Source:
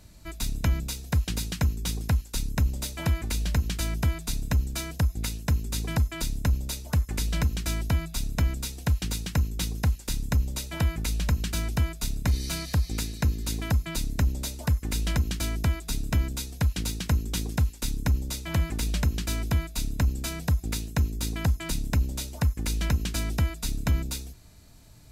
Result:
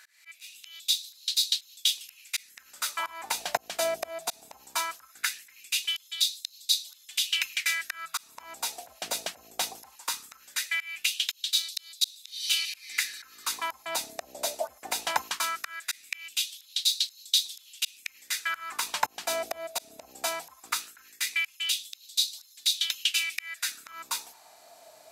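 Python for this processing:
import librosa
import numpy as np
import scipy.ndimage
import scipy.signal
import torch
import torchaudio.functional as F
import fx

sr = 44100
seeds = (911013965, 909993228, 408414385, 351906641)

y = fx.auto_swell(x, sr, attack_ms=245.0)
y = fx.filter_lfo_highpass(y, sr, shape='sine', hz=0.19, low_hz=650.0, high_hz=4000.0, q=5.4)
y = y * librosa.db_to_amplitude(3.0)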